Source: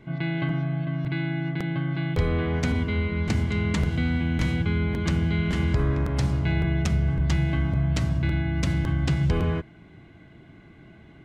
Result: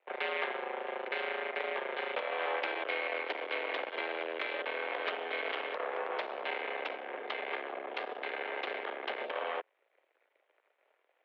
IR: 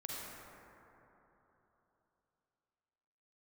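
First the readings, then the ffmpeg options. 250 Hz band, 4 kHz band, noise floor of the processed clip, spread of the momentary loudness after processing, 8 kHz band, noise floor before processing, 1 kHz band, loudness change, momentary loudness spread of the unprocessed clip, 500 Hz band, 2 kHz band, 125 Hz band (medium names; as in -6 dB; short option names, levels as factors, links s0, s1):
-24.5 dB, -3.5 dB, -77 dBFS, 5 LU, under -30 dB, -50 dBFS, +1.5 dB, -10.5 dB, 4 LU, -2.5 dB, -2.0 dB, under -40 dB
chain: -af "acompressor=threshold=0.0631:ratio=10,aeval=exprs='0.15*(cos(1*acos(clip(val(0)/0.15,-1,1)))-cos(1*PI/2))+0.0668*(cos(2*acos(clip(val(0)/0.15,-1,1)))-cos(2*PI/2))+0.0422*(cos(4*acos(clip(val(0)/0.15,-1,1)))-cos(4*PI/2))+0.0211*(cos(7*acos(clip(val(0)/0.15,-1,1)))-cos(7*PI/2))+0.00596*(cos(8*acos(clip(val(0)/0.15,-1,1)))-cos(8*PI/2))':c=same,highpass=f=400:t=q:w=0.5412,highpass=f=400:t=q:w=1.307,lowpass=f=3400:t=q:w=0.5176,lowpass=f=3400:t=q:w=0.7071,lowpass=f=3400:t=q:w=1.932,afreqshift=86"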